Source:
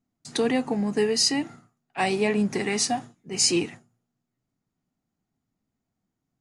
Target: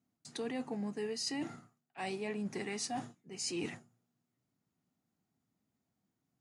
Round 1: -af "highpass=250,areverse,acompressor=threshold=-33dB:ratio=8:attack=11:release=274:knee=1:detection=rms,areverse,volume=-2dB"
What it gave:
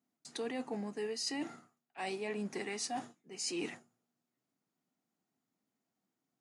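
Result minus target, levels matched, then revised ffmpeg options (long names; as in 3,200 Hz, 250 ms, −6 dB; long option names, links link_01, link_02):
125 Hz band −4.0 dB
-af "highpass=88,areverse,acompressor=threshold=-33dB:ratio=8:attack=11:release=274:knee=1:detection=rms,areverse,volume=-2dB"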